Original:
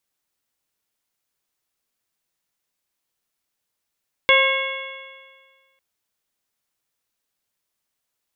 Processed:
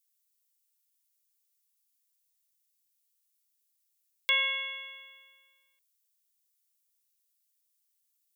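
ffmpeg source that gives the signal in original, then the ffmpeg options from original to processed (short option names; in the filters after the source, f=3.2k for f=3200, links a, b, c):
-f lavfi -i "aevalsrc='0.141*pow(10,-3*t/1.64)*sin(2*PI*532.9*t)+0.112*pow(10,-3*t/1.64)*sin(2*PI*1071.21*t)+0.075*pow(10,-3*t/1.64)*sin(2*PI*1620.23*t)+0.237*pow(10,-3*t/1.64)*sin(2*PI*2185.12*t)+0.075*pow(10,-3*t/1.64)*sin(2*PI*2770.74*t)+0.112*pow(10,-3*t/1.64)*sin(2*PI*3381.71*t)':d=1.5:s=44100"
-af "aderivative"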